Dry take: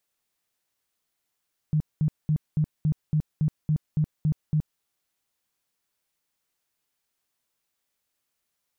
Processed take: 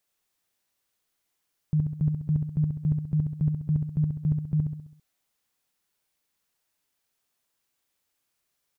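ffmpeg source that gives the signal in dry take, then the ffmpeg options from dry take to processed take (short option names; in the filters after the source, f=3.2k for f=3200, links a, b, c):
-f lavfi -i "aevalsrc='0.112*sin(2*PI*153*mod(t,0.28))*lt(mod(t,0.28),11/153)':d=3.08:s=44100"
-af "aecho=1:1:66|132|198|264|330|396:0.562|0.281|0.141|0.0703|0.0351|0.0176"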